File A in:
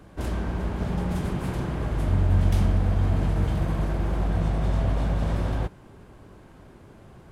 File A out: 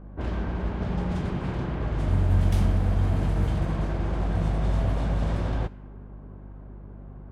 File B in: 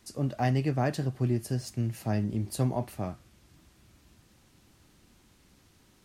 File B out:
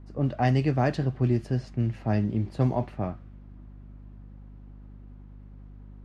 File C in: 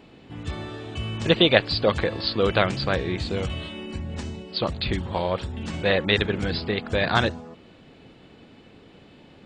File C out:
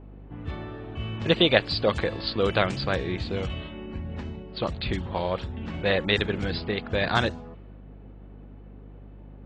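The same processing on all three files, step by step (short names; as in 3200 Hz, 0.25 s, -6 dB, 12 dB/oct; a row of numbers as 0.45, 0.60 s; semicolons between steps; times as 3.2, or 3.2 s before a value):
low-pass opened by the level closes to 1100 Hz, open at -18 dBFS; hum 50 Hz, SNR 17 dB; match loudness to -27 LUFS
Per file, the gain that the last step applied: -1.0, +3.5, -2.5 dB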